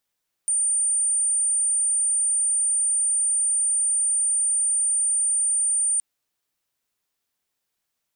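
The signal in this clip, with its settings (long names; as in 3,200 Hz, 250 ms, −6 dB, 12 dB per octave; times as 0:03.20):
tone sine 9,030 Hz −19 dBFS 5.52 s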